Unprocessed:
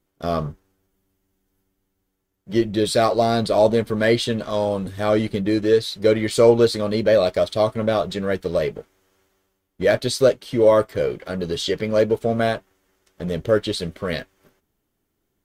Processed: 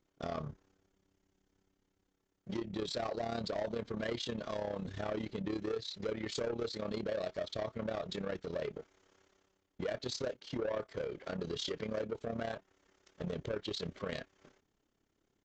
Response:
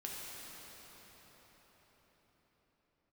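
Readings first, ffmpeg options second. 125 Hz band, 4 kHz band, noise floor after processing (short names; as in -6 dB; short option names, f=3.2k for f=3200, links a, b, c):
-17.5 dB, -14.5 dB, -81 dBFS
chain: -af "lowshelf=f=140:g=-4.5,acompressor=threshold=-34dB:ratio=2.5,aresample=16000,asoftclip=type=tanh:threshold=-29dB,aresample=44100,tremolo=f=34:d=0.75"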